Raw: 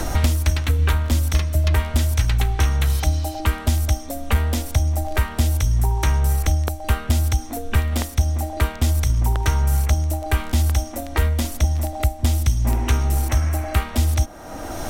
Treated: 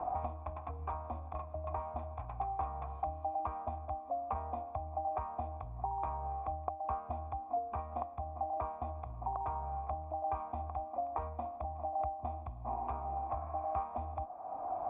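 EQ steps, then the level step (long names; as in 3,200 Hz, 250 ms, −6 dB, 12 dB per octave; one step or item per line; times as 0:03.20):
formant resonators in series a
high-pass filter 55 Hz
high-frequency loss of the air 79 metres
+3.0 dB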